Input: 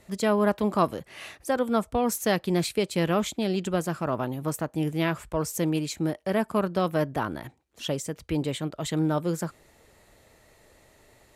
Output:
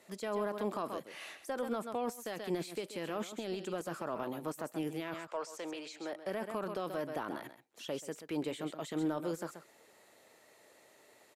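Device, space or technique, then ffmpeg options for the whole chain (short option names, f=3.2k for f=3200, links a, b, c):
de-esser from a sidechain: -filter_complex "[0:a]highpass=290,asettb=1/sr,asplit=3[a][b][c];[a]atrim=end=5.144[d];[b]atrim=start=5.14:end=6.13,asetpts=PTS-STARTPTS,afade=t=in:d=0.004:c=qsin,afade=t=out:st=0.986:d=0.004:c=qsin,acrossover=split=410 6900:gain=0.0891 1 0.1[e][f][g];[e][f][g]amix=inputs=3:normalize=0[h];[c]atrim=start=6.126[i];[d][h]acrossfade=d=0.004:c1=hsin:c2=qsin[j];[j][i]acrossfade=d=0.004:c1=qsin:c2=hsin,aecho=1:1:131:0.211,asplit=2[k][l];[l]highpass=f=6.8k:p=1,apad=whole_len=506368[m];[k][m]sidechaincompress=threshold=-47dB:ratio=4:attack=1.2:release=24,volume=-3.5dB"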